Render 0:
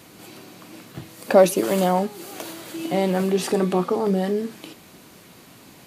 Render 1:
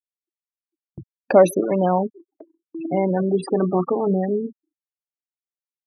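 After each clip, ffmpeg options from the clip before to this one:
ffmpeg -i in.wav -af "afftfilt=real='re*gte(hypot(re,im),0.0891)':imag='im*gte(hypot(re,im),0.0891)':win_size=1024:overlap=0.75,agate=range=-33dB:threshold=-37dB:ratio=16:detection=peak,volume=1dB" out.wav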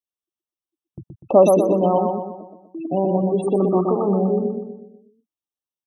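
ffmpeg -i in.wav -filter_complex "[0:a]asplit=2[link_01][link_02];[link_02]adelay=123,lowpass=frequency=2700:poles=1,volume=-3.5dB,asplit=2[link_03][link_04];[link_04]adelay=123,lowpass=frequency=2700:poles=1,volume=0.48,asplit=2[link_05][link_06];[link_06]adelay=123,lowpass=frequency=2700:poles=1,volume=0.48,asplit=2[link_07][link_08];[link_08]adelay=123,lowpass=frequency=2700:poles=1,volume=0.48,asplit=2[link_09][link_10];[link_10]adelay=123,lowpass=frequency=2700:poles=1,volume=0.48,asplit=2[link_11][link_12];[link_12]adelay=123,lowpass=frequency=2700:poles=1,volume=0.48[link_13];[link_03][link_05][link_07][link_09][link_11][link_13]amix=inputs=6:normalize=0[link_14];[link_01][link_14]amix=inputs=2:normalize=0,afftfilt=real='re*eq(mod(floor(b*sr/1024/1300),2),0)':imag='im*eq(mod(floor(b*sr/1024/1300),2),0)':win_size=1024:overlap=0.75" out.wav

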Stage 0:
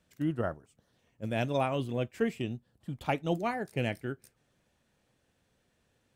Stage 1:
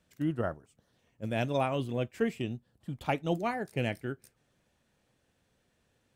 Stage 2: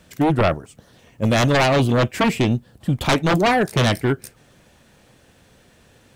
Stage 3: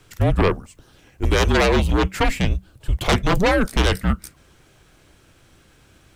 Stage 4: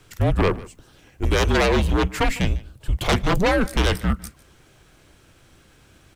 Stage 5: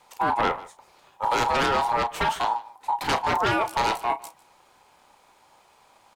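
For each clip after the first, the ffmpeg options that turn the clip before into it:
ffmpeg -i in.wav -af anull out.wav
ffmpeg -i in.wav -af "aeval=exprs='0.15*sin(PI/2*3.98*val(0)/0.15)':channel_layout=same,volume=4dB" out.wav
ffmpeg -i in.wav -af "afreqshift=-190" out.wav
ffmpeg -i in.wav -filter_complex "[0:a]asplit=2[link_01][link_02];[link_02]asoftclip=type=hard:threshold=-22dB,volume=-7.5dB[link_03];[link_01][link_03]amix=inputs=2:normalize=0,aecho=1:1:151:0.0944,volume=-3dB" out.wav
ffmpeg -i in.wav -filter_complex "[0:a]aeval=exprs='val(0)*sin(2*PI*890*n/s)':channel_layout=same,asplit=2[link_01][link_02];[link_02]adelay=34,volume=-11.5dB[link_03];[link_01][link_03]amix=inputs=2:normalize=0,volume=-2dB" out.wav

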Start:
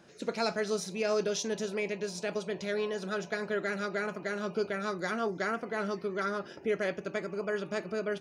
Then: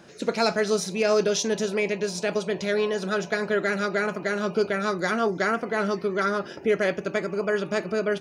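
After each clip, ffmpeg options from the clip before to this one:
ffmpeg -i in.wav -af "asoftclip=type=hard:threshold=-21dB,volume=8dB" out.wav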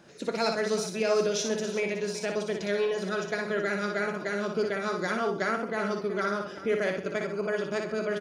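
ffmpeg -i in.wav -af "aecho=1:1:59|130|374:0.562|0.178|0.188,volume=-5.5dB" out.wav

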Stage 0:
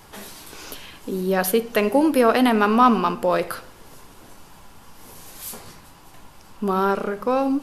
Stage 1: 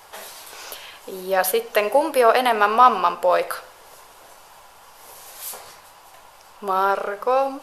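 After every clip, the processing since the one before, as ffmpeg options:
ffmpeg -i in.wav -af "lowshelf=frequency=390:width_type=q:width=1.5:gain=-13.5,volume=1.5dB" out.wav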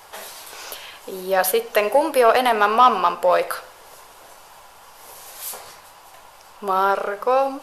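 ffmpeg -i in.wav -af "asoftclip=type=tanh:threshold=-4.5dB,volume=1.5dB" out.wav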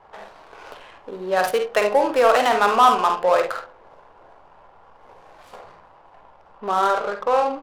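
ffmpeg -i in.wav -af "aecho=1:1:49|73:0.473|0.282,adynamicsmooth=sensitivity=3:basefreq=980,volume=-1.5dB" out.wav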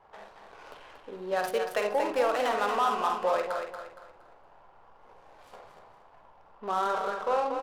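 ffmpeg -i in.wav -filter_complex "[0:a]alimiter=limit=-10dB:level=0:latency=1:release=209,asplit=2[link_01][link_02];[link_02]aecho=0:1:233|466|699|932:0.473|0.156|0.0515|0.017[link_03];[link_01][link_03]amix=inputs=2:normalize=0,volume=-8dB" out.wav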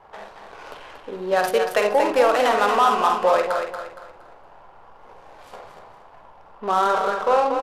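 ffmpeg -i in.wav -af "aresample=32000,aresample=44100,volume=9dB" out.wav

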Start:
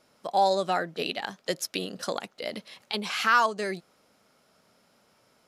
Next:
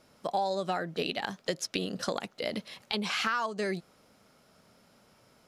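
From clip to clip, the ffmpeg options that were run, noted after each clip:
ffmpeg -i in.wav -filter_complex "[0:a]acrossover=split=8700[link_01][link_02];[link_02]acompressor=threshold=-56dB:ratio=4:attack=1:release=60[link_03];[link_01][link_03]amix=inputs=2:normalize=0,lowshelf=frequency=180:gain=8.5,acompressor=threshold=-28dB:ratio=6,volume=1dB" out.wav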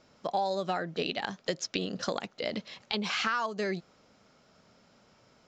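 ffmpeg -i in.wav -af "aresample=16000,aresample=44100" out.wav

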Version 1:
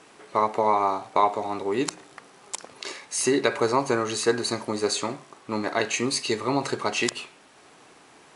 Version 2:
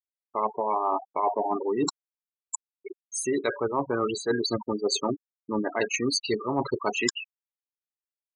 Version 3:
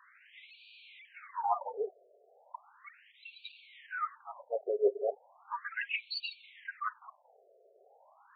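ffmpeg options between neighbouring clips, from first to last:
ffmpeg -i in.wav -af "afftfilt=real='re*gte(hypot(re,im),0.0891)':imag='im*gte(hypot(re,im),0.0891)':win_size=1024:overlap=0.75,areverse,acompressor=threshold=-30dB:ratio=12,areverse,volume=7.5dB" out.wav
ffmpeg -i in.wav -af "aeval=exprs='val(0)+0.5*0.0211*sgn(val(0))':channel_layout=same,highshelf=frequency=2700:gain=-11,afftfilt=real='re*between(b*sr/1024,490*pow(3300/490,0.5+0.5*sin(2*PI*0.36*pts/sr))/1.41,490*pow(3300/490,0.5+0.5*sin(2*PI*0.36*pts/sr))*1.41)':imag='im*between(b*sr/1024,490*pow(3300/490,0.5+0.5*sin(2*PI*0.36*pts/sr))/1.41,490*pow(3300/490,0.5+0.5*sin(2*PI*0.36*pts/sr))*1.41)':win_size=1024:overlap=0.75" out.wav

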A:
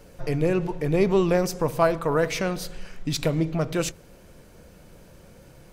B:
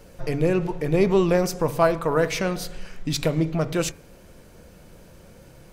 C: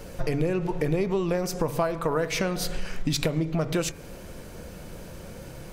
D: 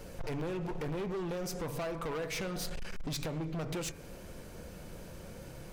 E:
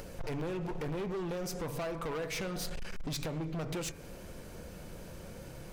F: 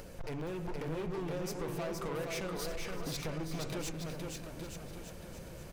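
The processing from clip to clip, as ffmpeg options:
ffmpeg -i in.wav -af "bandreject=frequency=143.7:width_type=h:width=4,bandreject=frequency=287.4:width_type=h:width=4,bandreject=frequency=431.1:width_type=h:width=4,bandreject=frequency=574.8:width_type=h:width=4,bandreject=frequency=718.5:width_type=h:width=4,bandreject=frequency=862.2:width_type=h:width=4,bandreject=frequency=1005.9:width_type=h:width=4,bandreject=frequency=1149.6:width_type=h:width=4,bandreject=frequency=1293.3:width_type=h:width=4,bandreject=frequency=1437:width_type=h:width=4,bandreject=frequency=1580.7:width_type=h:width=4,bandreject=frequency=1724.4:width_type=h:width=4,bandreject=frequency=1868.1:width_type=h:width=4,bandreject=frequency=2011.8:width_type=h:width=4,bandreject=frequency=2155.5:width_type=h:width=4,bandreject=frequency=2299.2:width_type=h:width=4,bandreject=frequency=2442.9:width_type=h:width=4,volume=1.5dB" out.wav
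ffmpeg -i in.wav -af "acompressor=threshold=-29dB:ratio=10,volume=7dB" out.wav
ffmpeg -i in.wav -af "asoftclip=type=hard:threshold=-27.5dB,volume=-6dB" out.wav
ffmpeg -i in.wav -af "acompressor=mode=upward:threshold=-43dB:ratio=2.5" out.wav
ffmpeg -i in.wav -af "aecho=1:1:470|869.5|1209|1498|1743:0.631|0.398|0.251|0.158|0.1,volume=-3dB" out.wav

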